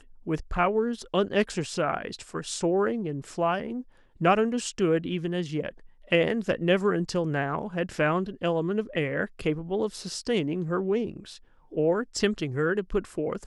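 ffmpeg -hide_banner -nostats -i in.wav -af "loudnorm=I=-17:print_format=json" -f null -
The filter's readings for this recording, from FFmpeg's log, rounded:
"input_i" : "-27.8",
"input_tp" : "-8.8",
"input_lra" : "2.4",
"input_thresh" : "-38.1",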